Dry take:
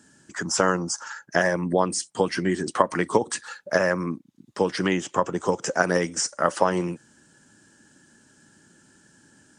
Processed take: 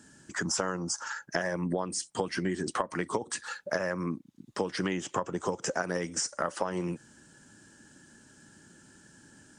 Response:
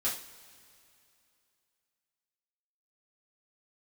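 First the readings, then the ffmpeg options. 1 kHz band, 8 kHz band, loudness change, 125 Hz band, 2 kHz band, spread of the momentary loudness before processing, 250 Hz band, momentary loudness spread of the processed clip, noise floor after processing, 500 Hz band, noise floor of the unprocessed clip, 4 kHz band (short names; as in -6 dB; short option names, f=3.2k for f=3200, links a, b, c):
-9.0 dB, -5.0 dB, -8.0 dB, -6.0 dB, -8.0 dB, 10 LU, -7.0 dB, 6 LU, -59 dBFS, -9.0 dB, -59 dBFS, -5.5 dB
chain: -af "acompressor=threshold=-28dB:ratio=5,lowshelf=f=66:g=7.5"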